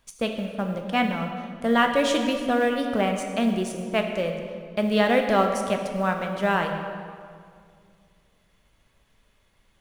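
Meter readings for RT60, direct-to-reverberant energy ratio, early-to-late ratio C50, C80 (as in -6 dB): 2.2 s, 3.5 dB, 5.5 dB, 6.5 dB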